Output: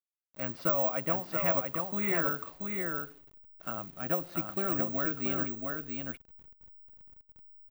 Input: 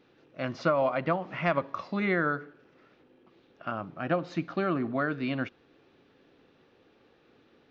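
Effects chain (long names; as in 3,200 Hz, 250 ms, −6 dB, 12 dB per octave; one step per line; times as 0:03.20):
hold until the input has moved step −47.5 dBFS
single-tap delay 682 ms −4 dB
bad sample-rate conversion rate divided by 2×, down none, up zero stuff
level −6 dB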